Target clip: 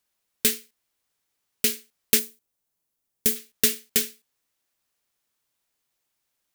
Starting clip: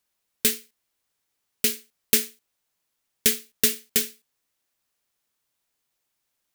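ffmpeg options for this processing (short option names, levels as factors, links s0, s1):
-filter_complex "[0:a]asettb=1/sr,asplit=3[s0][s1][s2];[s0]atrim=end=2.194[s3];[s1]atrim=start=2.19:end=3.36,asetpts=PTS-STARTPTS,afade=t=in:d=0.004:c=qsin,afade=t=out:st=1.166:d=0.004:c=qsin,equalizer=f=2300:w=0.34:g=-8.5[s4];[s2]atrim=start=3.356[s5];[s3][s4]acrossfade=d=0.004:c1=hsin:c2=qsin[s6];[s6][s5]acrossfade=d=0.004:c1=qsin:c2=hsin"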